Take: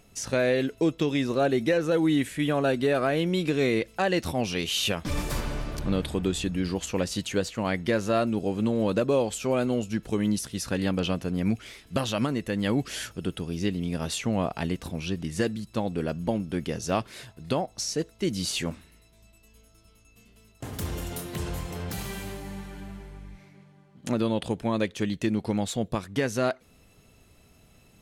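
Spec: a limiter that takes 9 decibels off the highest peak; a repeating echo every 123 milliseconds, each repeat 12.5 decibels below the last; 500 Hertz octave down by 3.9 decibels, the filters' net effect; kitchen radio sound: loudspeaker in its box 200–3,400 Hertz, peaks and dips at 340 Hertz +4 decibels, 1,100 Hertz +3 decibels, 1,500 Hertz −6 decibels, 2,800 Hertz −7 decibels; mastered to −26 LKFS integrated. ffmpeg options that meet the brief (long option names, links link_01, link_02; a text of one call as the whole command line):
ffmpeg -i in.wav -af "equalizer=frequency=500:width_type=o:gain=-6,alimiter=limit=-22.5dB:level=0:latency=1,highpass=200,equalizer=frequency=340:width_type=q:width=4:gain=4,equalizer=frequency=1100:width_type=q:width=4:gain=3,equalizer=frequency=1500:width_type=q:width=4:gain=-6,equalizer=frequency=2800:width_type=q:width=4:gain=-7,lowpass=frequency=3400:width=0.5412,lowpass=frequency=3400:width=1.3066,aecho=1:1:123|246|369:0.237|0.0569|0.0137,volume=9dB" out.wav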